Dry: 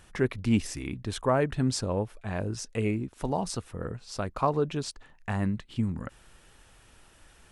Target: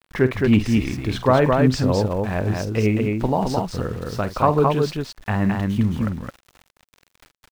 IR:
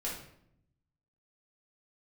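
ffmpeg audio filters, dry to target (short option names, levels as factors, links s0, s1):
-af "lowpass=4100,aeval=exprs='val(0)*gte(abs(val(0)),0.00422)':c=same,aecho=1:1:46.65|215.7:0.251|0.708,volume=2.51"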